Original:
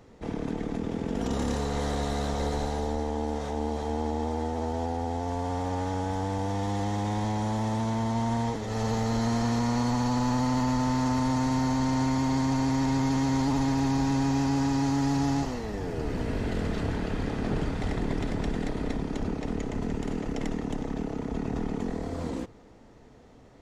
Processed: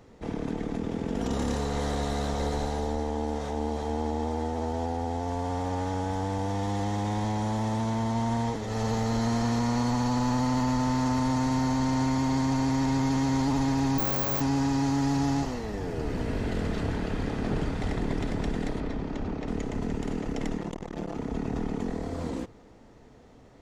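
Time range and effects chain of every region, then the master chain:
13.98–14.41 s: comb filter that takes the minimum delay 8.9 ms + careless resampling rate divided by 2×, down none, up zero stuff
18.80–19.48 s: hard clipper -26.5 dBFS + distance through air 88 m
20.58–21.17 s: bass shelf 88 Hz -7 dB + comb 5.8 ms, depth 98% + transformer saturation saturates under 390 Hz
whole clip: none

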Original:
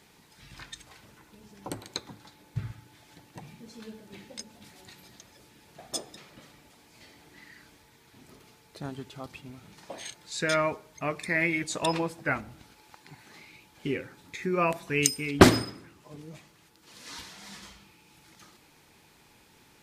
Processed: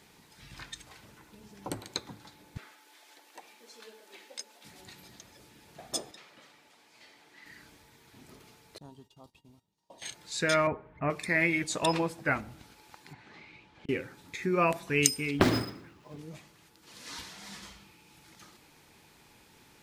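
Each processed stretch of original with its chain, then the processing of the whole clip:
2.57–4.65 s: Bessel high-pass 510 Hz, order 6 + tape noise reduction on one side only encoder only
6.11–7.46 s: high-pass 670 Hz 6 dB/octave + treble shelf 7.6 kHz -10 dB
8.78–10.02 s: gate -49 dBFS, range -17 dB + high-order bell 1.8 kHz -9 dB 1.1 oct + feedback comb 930 Hz, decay 0.16 s, mix 80%
10.67–11.10 s: low-pass 2.1 kHz 24 dB/octave + bass shelf 160 Hz +8 dB
13.13–13.89 s: low-pass 3.5 kHz + inverted gate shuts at -36 dBFS, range -37 dB
15.35–16.19 s: median filter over 5 samples + compression 2.5:1, threshold -21 dBFS
whole clip: none

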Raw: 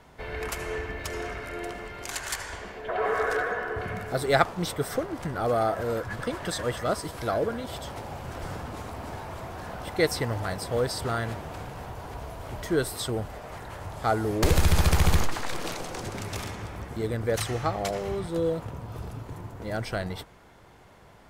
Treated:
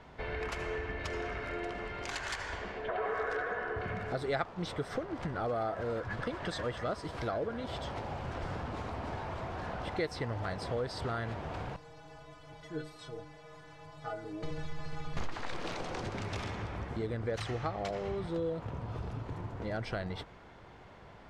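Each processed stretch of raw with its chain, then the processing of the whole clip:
11.76–15.17 s: one-bit delta coder 64 kbps, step -38 dBFS + inharmonic resonator 150 Hz, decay 0.36 s, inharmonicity 0.008
whole clip: low-pass 4.4 kHz 12 dB/octave; compression 2.5:1, threshold -35 dBFS

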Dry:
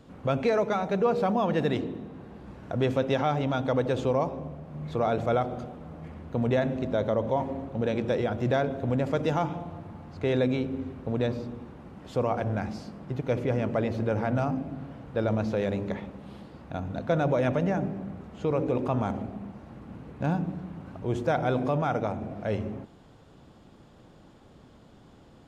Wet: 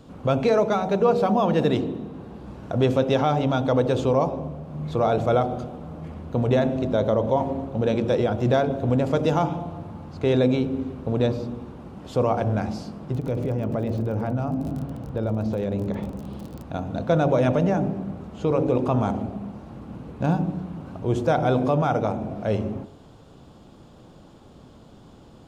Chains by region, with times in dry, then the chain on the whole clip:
13.13–16.63 s: tilt EQ -1.5 dB/octave + crackle 36 per s -36 dBFS + compression 4:1, threshold -28 dBFS
whole clip: peaking EQ 1.9 kHz -6.5 dB 0.79 oct; de-hum 46.86 Hz, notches 20; trim +6 dB

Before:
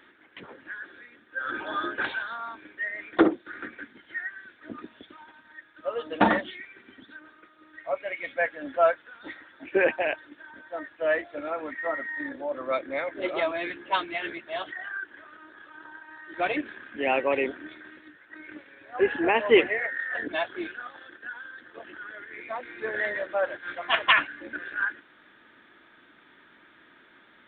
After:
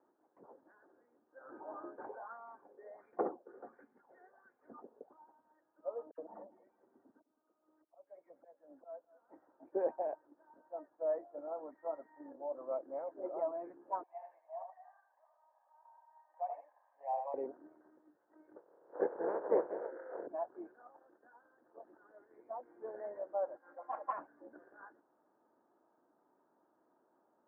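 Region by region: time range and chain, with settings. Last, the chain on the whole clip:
2.09–5.13 s: comb of notches 320 Hz + sweeping bell 1.4 Hz 410–2600 Hz +17 dB
6.11–9.52 s: slow attack 710 ms + phase dispersion lows, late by 71 ms, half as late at 1.9 kHz + feedback delay 208 ms, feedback 40%, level -19 dB
14.03–17.34 s: high-pass 650 Hz 24 dB/octave + static phaser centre 1.4 kHz, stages 6 + delay 78 ms -5.5 dB
18.55–20.26 s: spectral peaks clipped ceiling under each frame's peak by 26 dB + cabinet simulation 230–2100 Hz, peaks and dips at 240 Hz -7 dB, 350 Hz +8 dB, 490 Hz +10 dB, 770 Hz -7 dB, 1.1 kHz -4 dB, 1.6 kHz +8 dB
23.56–24.13 s: high-pass 460 Hz 6 dB/octave + comb 3.7 ms, depth 69%
whole clip: steep low-pass 860 Hz 36 dB/octave; differentiator; trim +12.5 dB

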